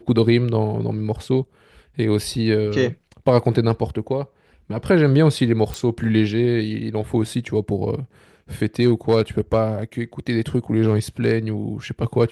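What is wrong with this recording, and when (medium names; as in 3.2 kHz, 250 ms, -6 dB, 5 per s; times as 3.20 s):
5.74 s: pop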